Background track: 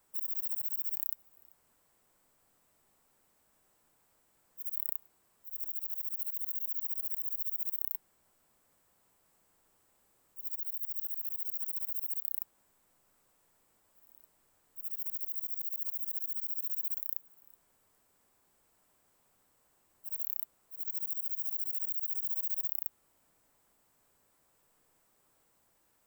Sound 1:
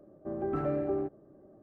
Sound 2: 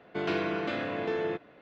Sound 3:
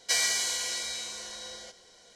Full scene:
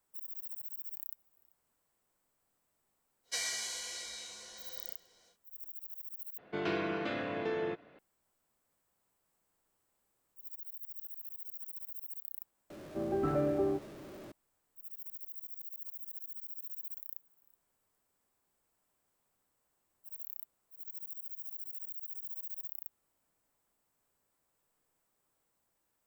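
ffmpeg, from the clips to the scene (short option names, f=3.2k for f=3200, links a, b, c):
-filter_complex "[0:a]volume=-8.5dB[a];[3:a]flanger=delay=1.3:depth=8:regen=-43:speed=1.3:shape=triangular[b];[1:a]aeval=exprs='val(0)+0.5*0.00501*sgn(val(0))':c=same[c];[a]asplit=2[d][e];[d]atrim=end=6.384[f];[2:a]atrim=end=1.61,asetpts=PTS-STARTPTS,volume=-4dB[g];[e]atrim=start=7.986[h];[b]atrim=end=2.15,asetpts=PTS-STARTPTS,volume=-6dB,afade=t=in:d=0.1,afade=t=out:st=2.05:d=0.1,adelay=3230[i];[c]atrim=end=1.62,asetpts=PTS-STARTPTS,volume=-0.5dB,afade=t=in:d=0.004:c=hsin,afade=t=out:st=1.616:d=0.004:c=hsin,adelay=12700[j];[f][g]acrossfade=d=0.004:c1=hsin:c2=hsin[k];[k][h]acrossfade=d=0.004:c1=hsin:c2=hsin[l];[l][i][j]amix=inputs=3:normalize=0"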